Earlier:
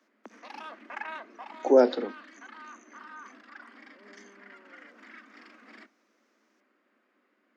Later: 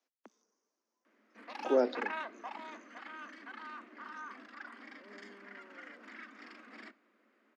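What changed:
speech -9.0 dB; background: entry +1.05 s

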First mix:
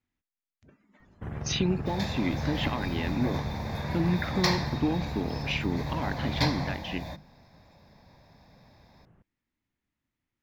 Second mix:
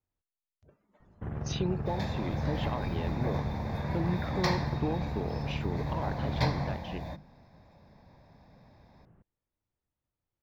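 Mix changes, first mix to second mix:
speech: add ten-band graphic EQ 250 Hz -12 dB, 500 Hz +5 dB, 2 kHz -8 dB; master: add treble shelf 2.2 kHz -9.5 dB

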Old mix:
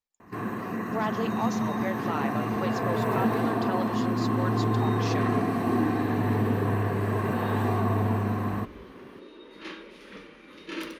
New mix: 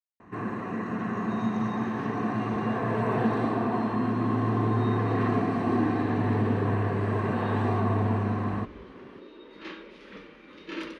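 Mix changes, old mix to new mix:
speech: muted; master: add distance through air 97 m

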